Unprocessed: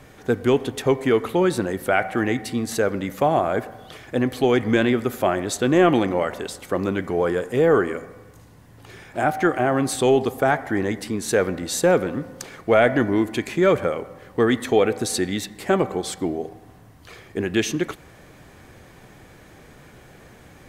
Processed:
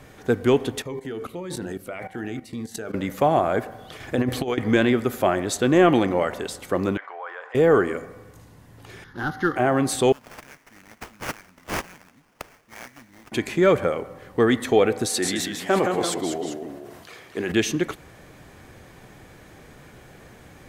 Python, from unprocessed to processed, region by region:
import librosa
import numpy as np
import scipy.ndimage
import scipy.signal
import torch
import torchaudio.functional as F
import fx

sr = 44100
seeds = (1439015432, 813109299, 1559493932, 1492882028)

y = fx.chain(x, sr, fx.hum_notches(base_hz=50, count=10),
    fx.level_steps(step_db=15),
    fx.notch_cascade(direction='falling', hz=1.8), at=(0.82, 2.94))
y = fx.chain(y, sr, fx.low_shelf(hz=240.0, db=2.5),
    fx.hum_notches(base_hz=60, count=10),
    fx.over_compress(threshold_db=-22.0, ratio=-0.5), at=(4.0, 4.58))
y = fx.chain(y, sr, fx.highpass(hz=860.0, slope=24),
    fx.spacing_loss(db_at_10k=44),
    fx.env_flatten(amount_pct=50), at=(6.97, 7.55))
y = fx.chain(y, sr, fx.cvsd(bps=64000),
    fx.high_shelf(hz=6500.0, db=-7.5),
    fx.fixed_phaser(hz=2400.0, stages=6), at=(9.04, 9.56))
y = fx.chain(y, sr, fx.cheby2_bandstop(low_hz=530.0, high_hz=1100.0, order=4, stop_db=60),
    fx.pre_emphasis(coefficient=0.97),
    fx.sample_hold(seeds[0], rate_hz=4000.0, jitter_pct=20), at=(10.12, 13.32))
y = fx.chain(y, sr, fx.highpass(hz=350.0, slope=6),
    fx.echo_pitch(ms=133, semitones=-1, count=2, db_per_echo=-6.0),
    fx.sustainer(db_per_s=40.0), at=(15.09, 17.52))